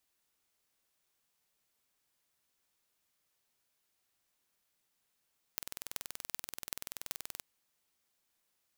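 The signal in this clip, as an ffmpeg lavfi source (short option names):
-f lavfi -i "aevalsrc='0.422*eq(mod(n,2110),0)*(0.5+0.5*eq(mod(n,16880),0))':d=1.82:s=44100"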